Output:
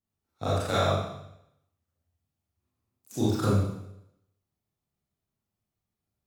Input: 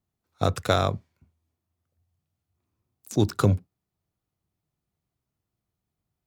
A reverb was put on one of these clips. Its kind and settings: Schroeder reverb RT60 0.8 s, combs from 28 ms, DRR -9 dB; gain -11.5 dB

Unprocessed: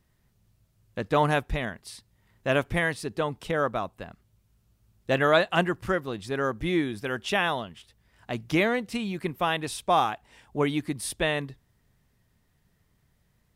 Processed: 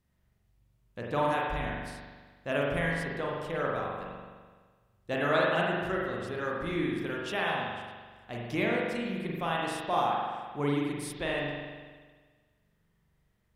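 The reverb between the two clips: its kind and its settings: spring tank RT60 1.5 s, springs 42 ms, chirp 80 ms, DRR -3.5 dB; gain -9 dB

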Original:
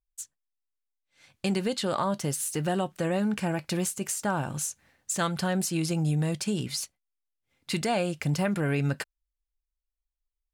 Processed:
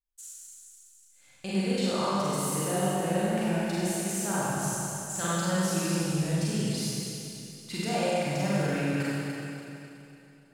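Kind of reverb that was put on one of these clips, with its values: Schroeder reverb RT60 3 s, combs from 32 ms, DRR -9.5 dB; gain -9.5 dB

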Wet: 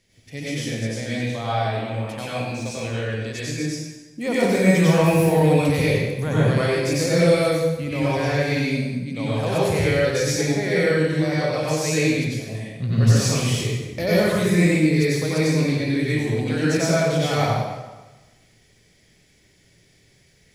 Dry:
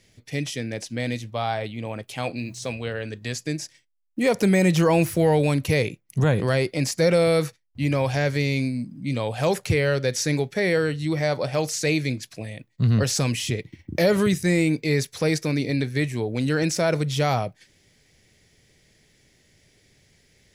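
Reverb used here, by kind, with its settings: plate-style reverb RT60 1.2 s, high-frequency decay 0.8×, pre-delay 80 ms, DRR -8.5 dB; gain -6.5 dB

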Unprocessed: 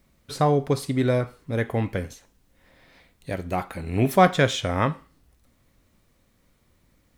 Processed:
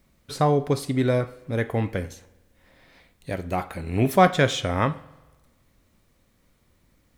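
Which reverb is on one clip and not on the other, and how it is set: spring tank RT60 1.2 s, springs 46 ms, chirp 50 ms, DRR 20 dB

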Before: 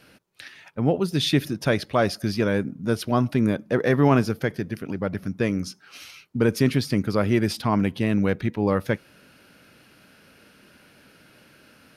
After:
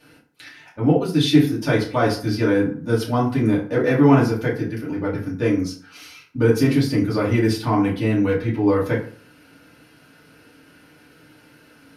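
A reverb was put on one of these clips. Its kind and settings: FDN reverb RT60 0.47 s, low-frequency decay 1×, high-frequency decay 0.6×, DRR -7 dB; gain -5.5 dB

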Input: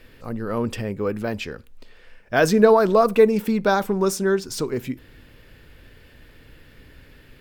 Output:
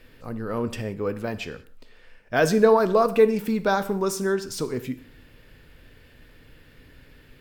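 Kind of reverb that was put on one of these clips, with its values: non-linear reverb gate 0.21 s falling, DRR 11 dB; gain -3 dB

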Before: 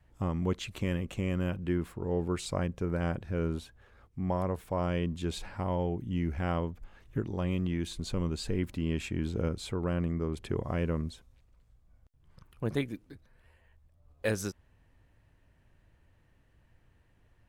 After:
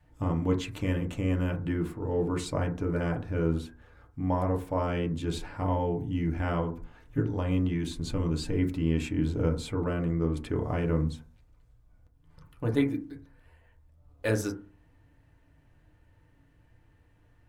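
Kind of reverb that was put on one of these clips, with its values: FDN reverb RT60 0.38 s, low-frequency decay 1.2×, high-frequency decay 0.25×, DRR 1.5 dB

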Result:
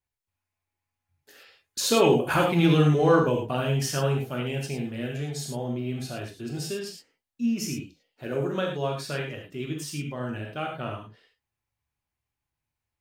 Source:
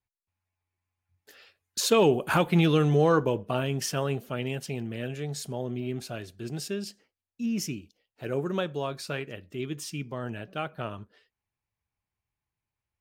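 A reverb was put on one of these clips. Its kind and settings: non-linear reverb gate 0.13 s flat, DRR 0 dB; gain -1 dB

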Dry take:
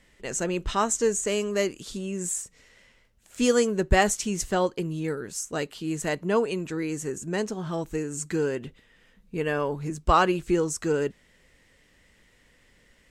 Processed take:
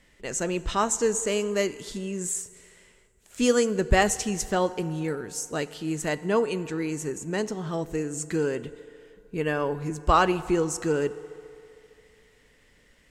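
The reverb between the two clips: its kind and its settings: FDN reverb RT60 2.7 s, low-frequency decay 0.7×, high-frequency decay 0.6×, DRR 15 dB

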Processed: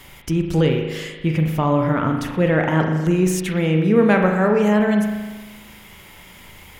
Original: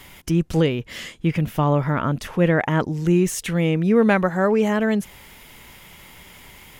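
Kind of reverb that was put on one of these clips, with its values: spring tank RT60 1.3 s, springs 38 ms, chirp 25 ms, DRR 3 dB

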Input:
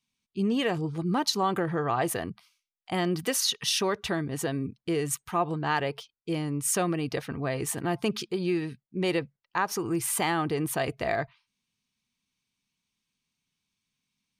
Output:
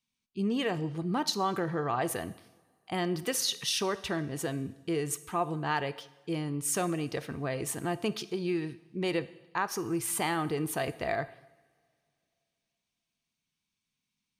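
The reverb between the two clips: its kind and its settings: two-slope reverb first 0.88 s, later 2.9 s, from -21 dB, DRR 13 dB; gain -3.5 dB

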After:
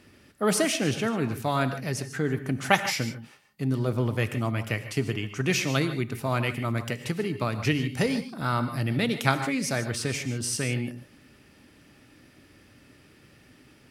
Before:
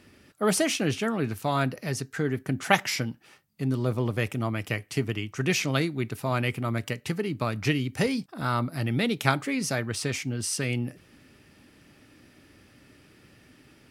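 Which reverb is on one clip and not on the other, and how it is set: non-linear reverb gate 0.17 s rising, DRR 9.5 dB

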